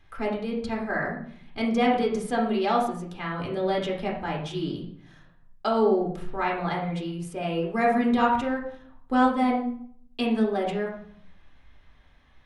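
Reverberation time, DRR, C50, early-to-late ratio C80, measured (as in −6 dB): 0.60 s, −1.5 dB, 5.0 dB, 9.5 dB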